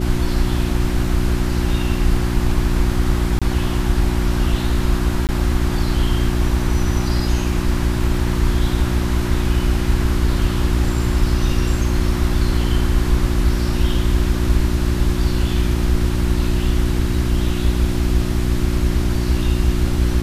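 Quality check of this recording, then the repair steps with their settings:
hum 60 Hz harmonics 6 -22 dBFS
3.39–3.42 gap 26 ms
5.27–5.29 gap 18 ms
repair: de-hum 60 Hz, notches 6; interpolate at 3.39, 26 ms; interpolate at 5.27, 18 ms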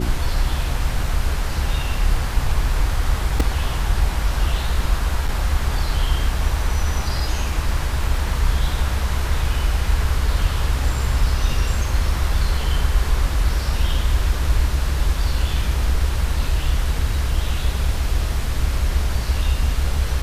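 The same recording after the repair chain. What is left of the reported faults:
none

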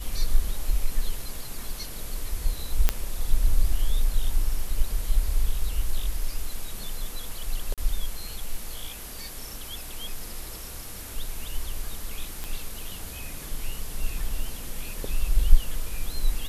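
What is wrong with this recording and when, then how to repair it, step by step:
2.89 pop -5 dBFS
7.74–7.78 gap 37 ms
12.44 pop -17 dBFS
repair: de-click; interpolate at 7.74, 37 ms

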